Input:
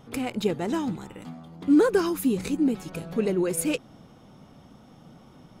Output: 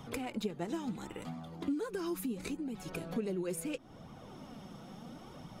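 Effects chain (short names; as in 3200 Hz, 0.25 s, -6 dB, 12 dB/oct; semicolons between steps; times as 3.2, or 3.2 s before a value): compressor 10:1, threshold -30 dBFS, peak gain reduction 15.5 dB; flange 0.73 Hz, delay 0.8 ms, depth 5.5 ms, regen +36%; three-band squash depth 40%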